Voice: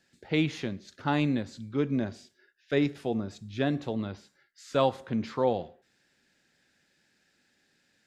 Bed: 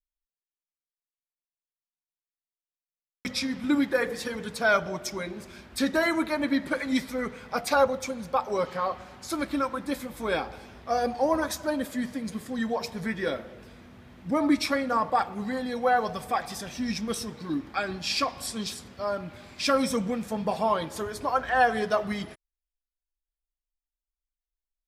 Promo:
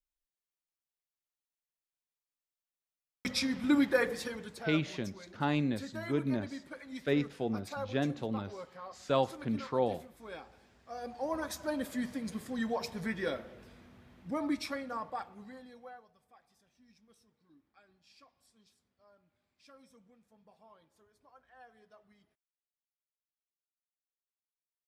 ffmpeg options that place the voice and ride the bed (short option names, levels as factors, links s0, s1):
-filter_complex "[0:a]adelay=4350,volume=0.631[s0];[1:a]volume=3.35,afade=t=out:st=4.01:d=0.66:silence=0.16788,afade=t=in:st=10.92:d=1:silence=0.223872,afade=t=out:st=13.11:d=2.95:silence=0.0316228[s1];[s0][s1]amix=inputs=2:normalize=0"